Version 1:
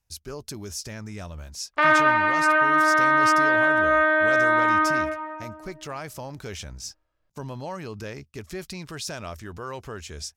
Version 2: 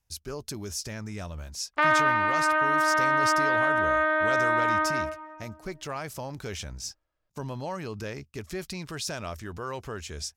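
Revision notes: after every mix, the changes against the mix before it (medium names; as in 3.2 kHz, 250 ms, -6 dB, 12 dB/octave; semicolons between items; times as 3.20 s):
background: send -9.5 dB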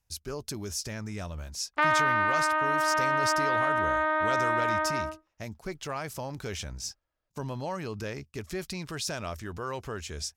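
reverb: off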